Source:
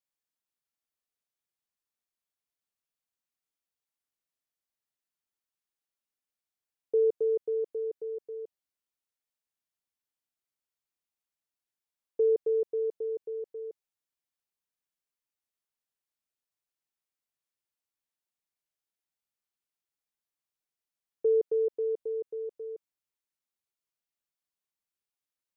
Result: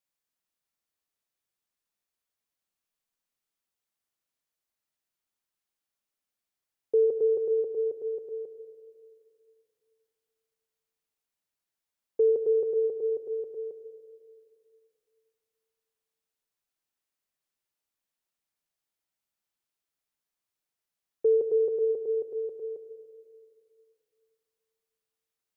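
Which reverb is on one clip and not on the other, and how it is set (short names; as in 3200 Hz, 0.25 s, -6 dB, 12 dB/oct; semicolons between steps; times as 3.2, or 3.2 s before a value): digital reverb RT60 2.4 s, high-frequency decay 0.45×, pre-delay 45 ms, DRR 6.5 dB; gain +2.5 dB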